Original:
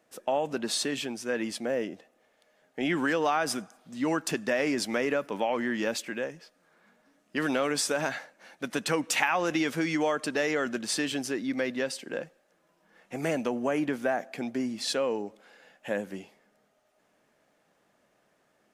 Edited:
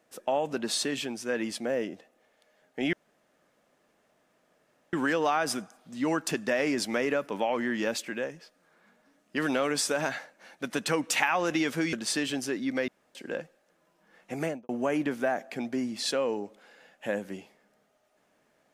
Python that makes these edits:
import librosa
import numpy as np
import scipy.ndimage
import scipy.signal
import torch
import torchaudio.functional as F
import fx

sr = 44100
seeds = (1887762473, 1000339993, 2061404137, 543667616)

y = fx.studio_fade_out(x, sr, start_s=13.2, length_s=0.31)
y = fx.edit(y, sr, fx.insert_room_tone(at_s=2.93, length_s=2.0),
    fx.cut(start_s=9.93, length_s=0.82),
    fx.room_tone_fill(start_s=11.7, length_s=0.27), tone=tone)